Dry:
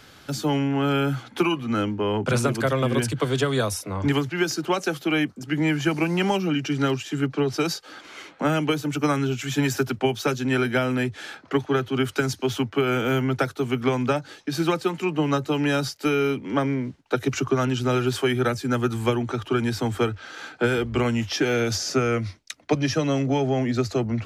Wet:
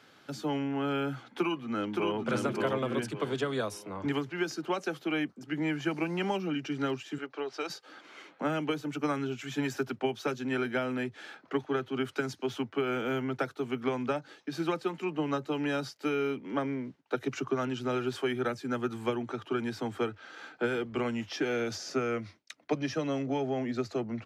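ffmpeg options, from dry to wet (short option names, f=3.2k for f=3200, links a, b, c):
-filter_complex "[0:a]asplit=2[a][b];[b]afade=t=in:st=1.23:d=0.01,afade=t=out:st=2.21:d=0.01,aecho=0:1:570|1140|1710|2280|2850:0.749894|0.262463|0.091862|0.0321517|0.0112531[c];[a][c]amix=inputs=2:normalize=0,asettb=1/sr,asplit=3[d][e][f];[d]atrim=end=7.184[g];[e]atrim=start=7.18:end=7.7,asetpts=PTS-STARTPTS,afade=t=in:d=0.004:c=qsin,afade=t=out:st=0.516:d=0.004:c=qsin,acrossover=split=370 7800:gain=0.0708 1 0.178[h][i][j];[h][i][j]amix=inputs=3:normalize=0[k];[f]atrim=start=7.696[l];[g][k]acrossfade=d=0.004:c1=hsin:c2=qsin[m];[m][l]acrossfade=d=0.004:c1=qsin:c2=hsin,highpass=180,highshelf=f=5.3k:g=-10,volume=-7.5dB"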